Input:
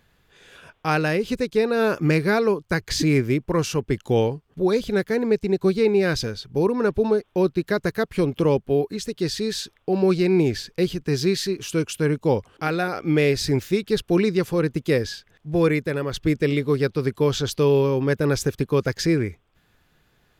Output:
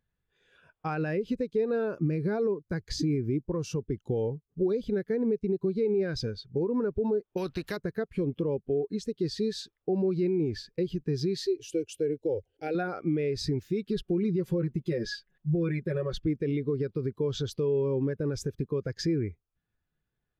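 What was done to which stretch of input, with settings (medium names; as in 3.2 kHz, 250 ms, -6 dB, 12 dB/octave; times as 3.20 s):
1.91–4.70 s: peaking EQ 2 kHz -3.5 dB 1.6 oct
7.37–7.77 s: spectrum-flattening compressor 2:1
11.45–12.75 s: static phaser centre 470 Hz, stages 4
13.88–16.20 s: comb 5.4 ms, depth 100%
whole clip: peak limiter -16 dBFS; compression, threshold -24 dBFS; spectral contrast expander 1.5:1; trim -2 dB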